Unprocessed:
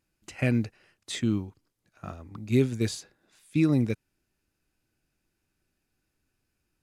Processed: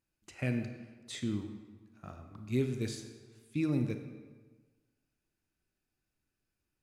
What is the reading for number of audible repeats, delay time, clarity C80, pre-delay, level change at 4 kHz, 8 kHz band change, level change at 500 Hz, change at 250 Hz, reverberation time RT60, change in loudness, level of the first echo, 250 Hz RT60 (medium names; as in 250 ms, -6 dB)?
no echo, no echo, 9.0 dB, 26 ms, -7.5 dB, -8.0 dB, -7.5 dB, -8.0 dB, 1.4 s, -8.0 dB, no echo, 1.4 s